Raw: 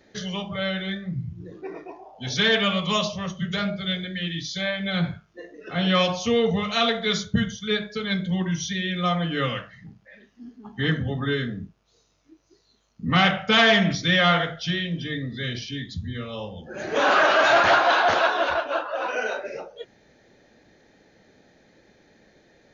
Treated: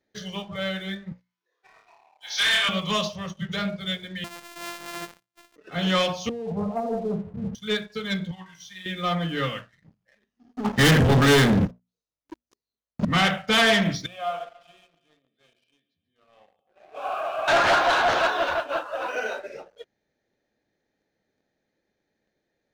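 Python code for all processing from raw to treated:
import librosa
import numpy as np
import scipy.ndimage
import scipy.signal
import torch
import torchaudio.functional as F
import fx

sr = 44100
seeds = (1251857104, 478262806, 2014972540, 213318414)

y = fx.chain(x, sr, fx.highpass(hz=820.0, slope=24),
    fx.room_flutter(wall_m=4.8, rt60_s=0.62), at=(1.12, 2.69))
y = fx.chain(y, sr, fx.sample_sort(block=128),
    fx.highpass(hz=920.0, slope=6), at=(4.24, 5.56))
y = fx.chain(y, sr, fx.zero_step(step_db=-37.0),
    fx.steep_lowpass(hz=970.0, slope=48),
    fx.over_compress(threshold_db=-26.0, ratio=-1.0), at=(6.29, 7.55))
y = fx.chain(y, sr, fx.low_shelf_res(hz=620.0, db=-10.0, q=3.0),
    fx.comb_fb(f0_hz=62.0, decay_s=0.28, harmonics='all', damping=0.0, mix_pct=80), at=(8.31, 8.86))
y = fx.chain(y, sr, fx.leveller(passes=5),
    fx.peak_eq(hz=530.0, db=3.5, octaves=0.36), at=(10.54, 13.05))
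y = fx.chain(y, sr, fx.vowel_filter(vowel='a'),
    fx.echo_feedback(ms=138, feedback_pct=57, wet_db=-13), at=(14.06, 17.48))
y = fx.hum_notches(y, sr, base_hz=60, count=4)
y = fx.leveller(y, sr, passes=2)
y = fx.upward_expand(y, sr, threshold_db=-34.0, expansion=1.5)
y = y * librosa.db_to_amplitude(-4.5)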